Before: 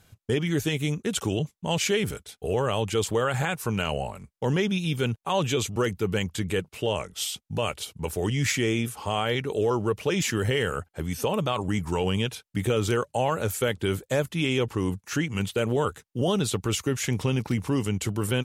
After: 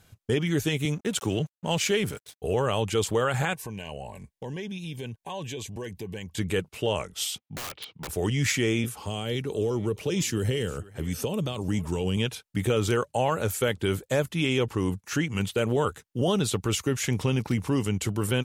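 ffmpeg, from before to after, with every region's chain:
ffmpeg -i in.wav -filter_complex "[0:a]asettb=1/sr,asplit=3[link_01][link_02][link_03];[link_01]atrim=end=0.854[link_04];[link_02]atrim=start=0.85:end=2.42,asetpts=PTS-STARTPTS,afade=type=in:duration=0.004:curve=qsin,afade=type=out:start_time=1.566:duration=0.004:curve=qsin,highpass=frequency=77:width=0.5412,highpass=frequency=77:width=1.3066,aeval=exprs='sgn(val(0))*max(abs(val(0))-0.00376,0)':channel_layout=same[link_05];[link_03]atrim=start=2.416[link_06];[link_04][link_05]acrossfade=duration=0.004:curve1=hsin:curve2=qsin[link_07];[link_07][link_06]acrossfade=duration=0.004:curve1=qsin:curve2=hsin,asettb=1/sr,asplit=3[link_08][link_09][link_10];[link_08]atrim=end=3.534[link_11];[link_09]atrim=start=3.53:end=6.37,asetpts=PTS-STARTPTS,afade=type=in:duration=0.004:curve=qsin,afade=type=out:start_time=2.836:duration=0.004:curve=qsin,asuperstop=centerf=1300:order=20:qfactor=3.5,acompressor=threshold=-37dB:ratio=2.5:attack=3.2:release=140:knee=1:detection=peak[link_12];[link_10]atrim=start=6.366[link_13];[link_11][link_12]acrossfade=duration=0.004:curve1=hsin:curve2=qsin[link_14];[link_14][link_13]acrossfade=duration=0.004:curve1=qsin:curve2=hsin,asettb=1/sr,asplit=3[link_15][link_16][link_17];[link_15]atrim=end=7.384[link_18];[link_16]atrim=start=7.38:end=8.09,asetpts=PTS-STARTPTS,afade=type=in:duration=0.004:curve=qsin,afade=type=out:start_time=0.706:duration=0.004:curve=qsin,highpass=170,equalizer=frequency=220:width_type=q:width=4:gain=-5,equalizer=frequency=400:width_type=q:width=4:gain=-5,equalizer=frequency=610:width_type=q:width=4:gain=-5,equalizer=frequency=1500:width_type=q:width=4:gain=-5,lowpass=frequency=3800:width=0.5412,lowpass=frequency=3800:width=1.3066,aeval=exprs='(mod(29.9*val(0)+1,2)-1)/29.9':channel_layout=same[link_19];[link_17]atrim=start=8.086[link_20];[link_18][link_19]acrossfade=duration=0.004:curve1=hsin:curve2=qsin[link_21];[link_21][link_20]acrossfade=duration=0.004:curve1=qsin:curve2=hsin,asettb=1/sr,asplit=3[link_22][link_23][link_24];[link_22]atrim=end=8.844[link_25];[link_23]atrim=start=8.84:end=12.17,asetpts=PTS-STARTPTS,afade=type=in:duration=0.004:curve=qsin,afade=type=out:start_time=3.326:duration=0.004:curve=qsin,aecho=1:1:466:0.0708,atrim=end_sample=146853,acrossover=split=490|3000[link_26][link_27][link_28];[link_27]acompressor=threshold=-42dB:ratio=4:attack=3.2:release=140:knee=2.83:detection=peak[link_29];[link_26][link_29][link_28]amix=inputs=3:normalize=0[link_30];[link_24]atrim=start=12.166[link_31];[link_25][link_30]acrossfade=duration=0.004:curve1=hsin:curve2=qsin[link_32];[link_32][link_31]acrossfade=duration=0.004:curve1=qsin:curve2=hsin" out.wav

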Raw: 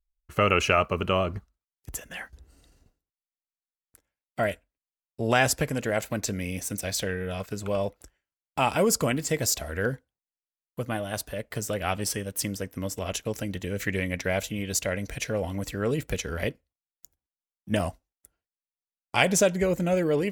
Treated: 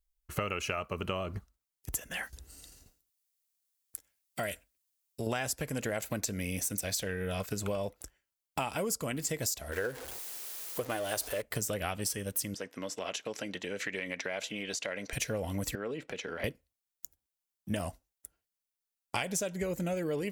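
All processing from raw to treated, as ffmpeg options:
ffmpeg -i in.wav -filter_complex "[0:a]asettb=1/sr,asplit=3[link_01][link_02][link_03];[link_01]atrim=end=2.234[link_04];[link_02]atrim=start=2.23:end=5.27,asetpts=PTS-STARTPTS,afade=type=in:duration=0.004:curve=qsin,afade=type=out:start_time=3.036:duration=0.004:curve=qsin,highshelf=frequency=2500:gain=9.5,acompressor=threshold=-41dB:ratio=1.5:attack=3.2:release=140:knee=1:detection=peak[link_05];[link_03]atrim=start=5.266[link_06];[link_04][link_05]acrossfade=duration=0.004:curve1=hsin:curve2=qsin[link_07];[link_07][link_06]acrossfade=duration=0.004:curve1=qsin:curve2=hsin,asettb=1/sr,asplit=3[link_08][link_09][link_10];[link_08]atrim=end=9.724[link_11];[link_09]atrim=start=9.72:end=11.42,asetpts=PTS-STARTPTS,afade=type=in:duration=0.004:curve=qsin,afade=type=out:start_time=1.696:duration=0.004:curve=qsin,aeval=exprs='val(0)+0.5*0.015*sgn(val(0))':channel_layout=same,lowshelf=frequency=280:width_type=q:width=1.5:gain=-8.5[link_12];[link_10]atrim=start=11.416[link_13];[link_11][link_12]acrossfade=duration=0.004:curve1=hsin:curve2=qsin[link_14];[link_14][link_13]acrossfade=duration=0.004:curve1=qsin:curve2=hsin,asettb=1/sr,asplit=3[link_15][link_16][link_17];[link_15]atrim=end=12.544[link_18];[link_16]atrim=start=12.54:end=15.13,asetpts=PTS-STARTPTS,afade=type=in:duration=0.004:curve=qsin,afade=type=out:start_time=2.586:duration=0.004:curve=qsin,lowshelf=frequency=270:gain=-10.5,acompressor=threshold=-31dB:ratio=3:attack=3.2:release=140:knee=1:detection=peak,highpass=190,lowpass=4700[link_19];[link_17]atrim=start=15.126[link_20];[link_18][link_19]acrossfade=duration=0.004:curve1=hsin:curve2=qsin[link_21];[link_21][link_20]acrossfade=duration=0.004:curve1=qsin:curve2=hsin,asettb=1/sr,asplit=3[link_22][link_23][link_24];[link_22]atrim=end=15.754[link_25];[link_23]atrim=start=15.75:end=16.44,asetpts=PTS-STARTPTS,afade=type=in:duration=0.004:curve=qsin,afade=type=out:start_time=0.686:duration=0.004:curve=qsin,acompressor=threshold=-32dB:ratio=4:attack=3.2:release=140:knee=1:detection=peak,highpass=260,lowpass=3300[link_26];[link_24]atrim=start=16.436[link_27];[link_25][link_26]acrossfade=duration=0.004:curve1=hsin:curve2=qsin[link_28];[link_28][link_27]acrossfade=duration=0.004:curve1=qsin:curve2=hsin,highshelf=frequency=5500:gain=8,acompressor=threshold=-30dB:ratio=10" out.wav

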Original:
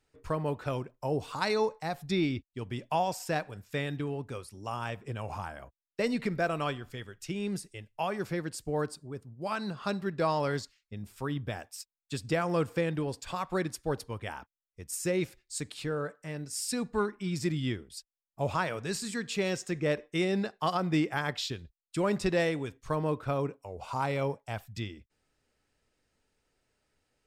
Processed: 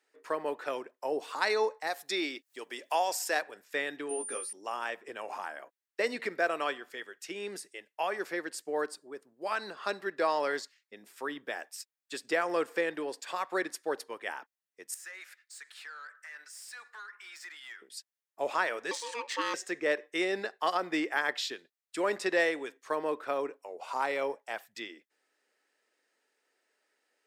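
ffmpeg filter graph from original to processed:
ffmpeg -i in.wav -filter_complex "[0:a]asettb=1/sr,asplit=3[link_01][link_02][link_03];[link_01]atrim=end=1.874[link_04];[link_02]atrim=start=1.87:end=3.42,asetpts=PTS-STARTPTS,afade=type=in:duration=0.004:curve=qsin,afade=type=out:start_time=1.546:duration=0.004:curve=qsin,bass=frequency=250:gain=-10,treble=frequency=4000:gain=8,acompressor=mode=upward:threshold=-42dB:ratio=2.5:attack=3.2:release=140:knee=2.83:detection=peak[link_05];[link_03]atrim=start=3.416[link_06];[link_04][link_05]acrossfade=duration=0.004:curve1=hsin:curve2=qsin[link_07];[link_07][link_06]acrossfade=duration=0.004:curve1=qsin:curve2=hsin,asettb=1/sr,asplit=3[link_08][link_09][link_10];[link_08]atrim=end=4.094[link_11];[link_09]atrim=start=4.09:end=4.53,asetpts=PTS-STARTPTS,afade=type=in:duration=0.004:curve=qsin,afade=type=out:start_time=0.436:duration=0.004:curve=qsin,bandreject=frequency=950:width=17,aeval=exprs='val(0)+0.0112*sin(2*PI*9200*n/s)':channel_layout=same,asplit=2[link_12][link_13];[link_13]adelay=17,volume=-3dB[link_14];[link_12][link_14]amix=inputs=2:normalize=0,atrim=end_sample=19404[link_15];[link_10]atrim=start=4.526[link_16];[link_11][link_15]acrossfade=duration=0.004:curve1=hsin:curve2=qsin[link_17];[link_17][link_16]acrossfade=duration=0.004:curve1=qsin:curve2=hsin,asettb=1/sr,asplit=3[link_18][link_19][link_20];[link_18]atrim=end=14.944[link_21];[link_19]atrim=start=14.94:end=17.82,asetpts=PTS-STARTPTS,afade=type=in:duration=0.004:curve=qsin,afade=type=out:start_time=2.876:duration=0.004:curve=qsin,highpass=frequency=1400:width_type=q:width=2.6,acompressor=threshold=-46dB:ratio=2.5:attack=3.2:release=140:knee=1:detection=peak,aeval=exprs='(tanh(141*val(0)+0.05)-tanh(0.05))/141':channel_layout=same[link_22];[link_20]atrim=start=17.816[link_23];[link_21][link_22]acrossfade=duration=0.004:curve1=hsin:curve2=qsin[link_24];[link_24][link_23]acrossfade=duration=0.004:curve1=qsin:curve2=hsin,asettb=1/sr,asplit=3[link_25][link_26][link_27];[link_25]atrim=end=18.914[link_28];[link_26]atrim=start=18.91:end=19.54,asetpts=PTS-STARTPTS,afade=type=in:duration=0.004:curve=qsin,afade=type=out:start_time=0.626:duration=0.004:curve=qsin,equalizer=frequency=6600:width=0.52:gain=6,adynamicsmooth=sensitivity=2.5:basefreq=4800,aeval=exprs='val(0)*sin(2*PI*710*n/s)':channel_layout=same[link_29];[link_27]atrim=start=19.536[link_30];[link_28][link_29]acrossfade=duration=0.004:curve1=hsin:curve2=qsin[link_31];[link_31][link_30]acrossfade=duration=0.004:curve1=qsin:curve2=hsin,highpass=frequency=330:width=0.5412,highpass=frequency=330:width=1.3066,equalizer=frequency=1800:width=3.4:gain=7" out.wav

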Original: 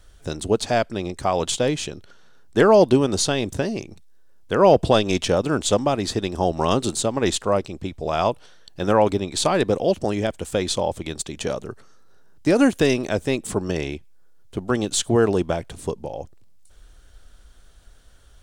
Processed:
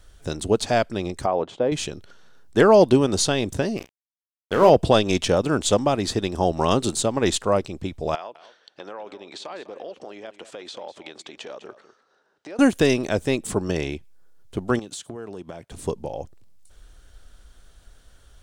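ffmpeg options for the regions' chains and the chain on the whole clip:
ffmpeg -i in.wav -filter_complex "[0:a]asettb=1/sr,asplit=3[link_01][link_02][link_03];[link_01]atrim=end=1.264[link_04];[link_02]atrim=start=1.26:end=1.72,asetpts=PTS-STARTPTS,afade=type=in:duration=0.004:curve=qsin,afade=type=out:start_time=0.456:duration=0.004:curve=qsin,bandpass=frequency=520:width_type=q:width=0.67,aemphasis=mode=reproduction:type=50kf[link_05];[link_03]atrim=start=1.716[link_06];[link_04][link_05]acrossfade=duration=0.004:curve1=hsin:curve2=qsin[link_07];[link_07][link_06]acrossfade=duration=0.004:curve1=qsin:curve2=hsin,asettb=1/sr,asplit=3[link_08][link_09][link_10];[link_08]atrim=end=3.774[link_11];[link_09]atrim=start=3.77:end=4.7,asetpts=PTS-STARTPTS,afade=type=in:duration=0.004:curve=qsin,afade=type=out:start_time=0.926:duration=0.004:curve=qsin,aeval=exprs='sgn(val(0))*max(abs(val(0))-0.0266,0)':channel_layout=same,asplit=2[link_12][link_13];[link_13]adelay=33,volume=-8dB[link_14];[link_12][link_14]amix=inputs=2:normalize=0,atrim=end_sample=41013[link_15];[link_10]atrim=start=4.696[link_16];[link_11][link_15]acrossfade=duration=0.004:curve1=hsin:curve2=qsin[link_17];[link_17][link_16]acrossfade=duration=0.004:curve1=qsin:curve2=hsin,asettb=1/sr,asplit=3[link_18][link_19][link_20];[link_18]atrim=end=8.154[link_21];[link_19]atrim=start=8.15:end=12.59,asetpts=PTS-STARTPTS,afade=type=in:duration=0.004:curve=qsin,afade=type=out:start_time=4.436:duration=0.004:curve=qsin,acompressor=threshold=-29dB:ratio=16:attack=3.2:release=140:knee=1:detection=peak,highpass=420,lowpass=4300,aecho=1:1:201:0.188,atrim=end_sample=195804[link_22];[link_20]atrim=start=12.586[link_23];[link_21][link_22]acrossfade=duration=0.004:curve1=hsin:curve2=qsin[link_24];[link_24][link_23]acrossfade=duration=0.004:curve1=qsin:curve2=hsin,asettb=1/sr,asplit=3[link_25][link_26][link_27];[link_25]atrim=end=14.794[link_28];[link_26]atrim=start=14.79:end=15.72,asetpts=PTS-STARTPTS,afade=type=in:duration=0.004:curve=qsin,afade=type=out:start_time=0.926:duration=0.004:curve=qsin,highpass=110,agate=range=-10dB:threshold=-39dB:ratio=16:release=100:detection=peak,acompressor=threshold=-33dB:ratio=6:attack=3.2:release=140:knee=1:detection=peak[link_29];[link_27]atrim=start=15.716[link_30];[link_28][link_29]acrossfade=duration=0.004:curve1=hsin:curve2=qsin[link_31];[link_31][link_30]acrossfade=duration=0.004:curve1=qsin:curve2=hsin" out.wav

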